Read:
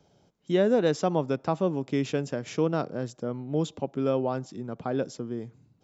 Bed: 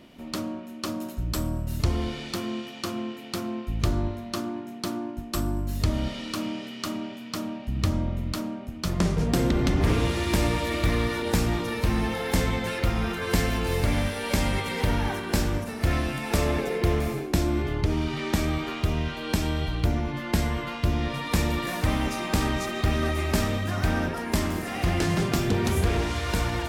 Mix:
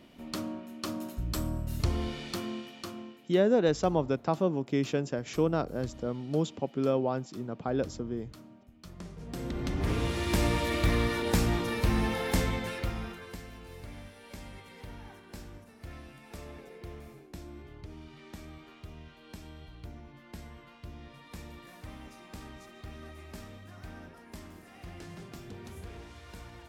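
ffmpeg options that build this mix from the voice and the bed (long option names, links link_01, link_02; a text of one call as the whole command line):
ffmpeg -i stem1.wav -i stem2.wav -filter_complex "[0:a]adelay=2800,volume=-1.5dB[link_01];[1:a]volume=13.5dB,afade=type=out:start_time=2.37:duration=0.97:silence=0.158489,afade=type=in:start_time=9.19:duration=1.39:silence=0.125893,afade=type=out:start_time=12.19:duration=1.18:silence=0.11885[link_02];[link_01][link_02]amix=inputs=2:normalize=0" out.wav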